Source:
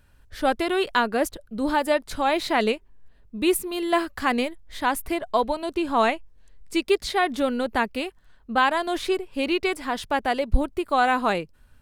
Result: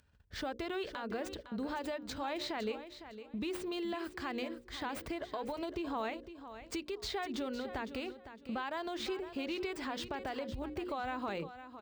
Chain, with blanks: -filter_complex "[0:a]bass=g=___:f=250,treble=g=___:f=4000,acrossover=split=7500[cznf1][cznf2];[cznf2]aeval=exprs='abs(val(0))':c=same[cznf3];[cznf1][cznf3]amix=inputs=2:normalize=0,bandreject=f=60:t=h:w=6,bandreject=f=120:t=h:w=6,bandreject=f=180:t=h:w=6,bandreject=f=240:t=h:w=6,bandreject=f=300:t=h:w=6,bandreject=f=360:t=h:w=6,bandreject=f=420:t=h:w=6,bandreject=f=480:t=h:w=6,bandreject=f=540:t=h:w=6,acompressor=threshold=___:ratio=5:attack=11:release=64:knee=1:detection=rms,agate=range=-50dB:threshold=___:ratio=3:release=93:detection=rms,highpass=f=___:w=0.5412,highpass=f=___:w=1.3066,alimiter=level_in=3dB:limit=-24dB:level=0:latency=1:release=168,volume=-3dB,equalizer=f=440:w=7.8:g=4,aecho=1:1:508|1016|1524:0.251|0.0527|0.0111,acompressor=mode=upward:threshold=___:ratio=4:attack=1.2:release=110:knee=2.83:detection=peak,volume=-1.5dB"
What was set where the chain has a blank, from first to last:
3, 2, -36dB, -40dB, 44, 44, -52dB